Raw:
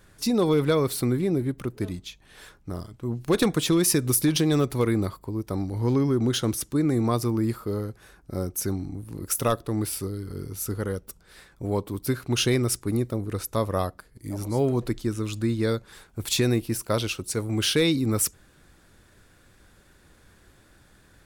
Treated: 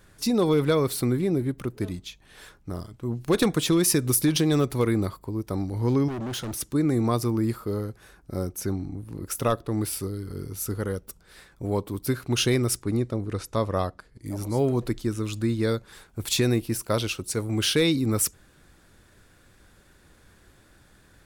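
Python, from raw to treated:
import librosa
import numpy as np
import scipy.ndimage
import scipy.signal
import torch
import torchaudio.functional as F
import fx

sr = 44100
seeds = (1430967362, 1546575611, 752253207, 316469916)

y = fx.clip_hard(x, sr, threshold_db=-30.0, at=(6.08, 6.6))
y = fx.high_shelf(y, sr, hz=5100.0, db=-7.0, at=(8.53, 9.72))
y = fx.lowpass(y, sr, hz=7300.0, slope=12, at=(12.82, 14.26))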